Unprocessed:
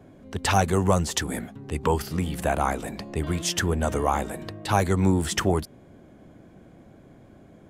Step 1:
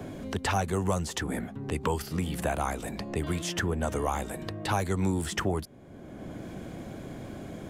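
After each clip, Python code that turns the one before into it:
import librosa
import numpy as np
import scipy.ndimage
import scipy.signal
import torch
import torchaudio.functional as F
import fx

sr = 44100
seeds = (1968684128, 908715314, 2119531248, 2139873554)

y = fx.band_squash(x, sr, depth_pct=70)
y = y * librosa.db_to_amplitude(-5.5)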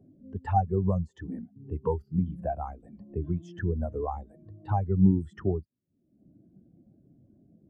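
y = fx.spectral_expand(x, sr, expansion=2.5)
y = y * librosa.db_to_amplitude(4.5)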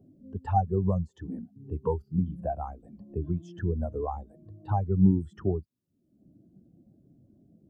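y = fx.peak_eq(x, sr, hz=2000.0, db=-11.0, octaves=0.45)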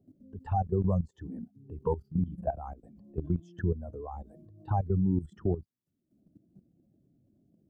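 y = fx.level_steps(x, sr, step_db=14)
y = y * librosa.db_to_amplitude(2.5)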